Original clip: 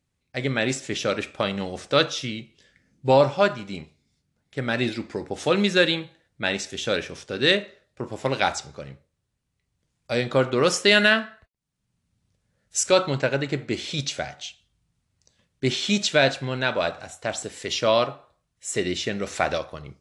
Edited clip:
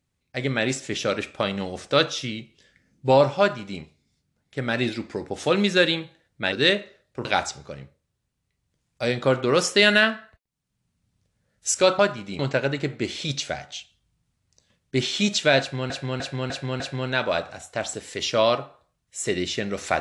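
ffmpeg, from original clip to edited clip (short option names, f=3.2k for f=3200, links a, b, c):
-filter_complex "[0:a]asplit=9[a][b][c][d][e][f][g][h][i];[a]atrim=end=6.522[j];[b]atrim=start=7.338:end=8.072[k];[c]atrim=start=8.338:end=13.082[l];[d]atrim=start=3.398:end=3.802[m];[e]atrim=start=13.078:end=16.592[n];[f]atrim=start=16.288:end=16.592[o];[g]atrim=start=16.288:end=16.592[p];[h]atrim=start=16.288:end=16.592[q];[i]atrim=start=16.288[r];[j][k]acrossfade=d=0.004:c1=hsin:c2=hsin[s];[s][l]acrossfade=d=0.004:c1=hsin:c2=hsin[t];[t][m]acrossfade=d=0.004:c1=hsin:c2=hsin[u];[u][n]acrossfade=d=0.004:c1=hsin:c2=hsin[v];[v][o]acrossfade=d=0.004:c1=hsin:c2=hsin[w];[w][p]acrossfade=d=0.004:c1=hsin:c2=hsin[x];[x][q]acrossfade=d=0.004:c1=hsin:c2=hsin[y];[y][r]acrossfade=d=0.004:c1=hsin:c2=hsin"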